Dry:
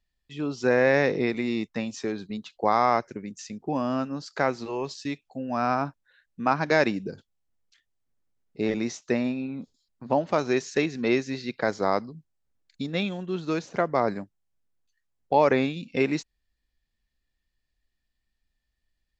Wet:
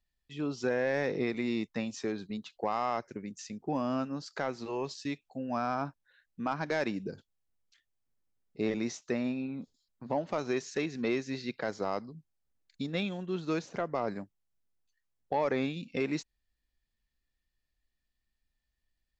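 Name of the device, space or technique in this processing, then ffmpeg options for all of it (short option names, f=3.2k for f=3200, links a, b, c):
soft clipper into limiter: -af "asoftclip=type=tanh:threshold=-11dB,alimiter=limit=-17dB:level=0:latency=1:release=218,volume=-4dB"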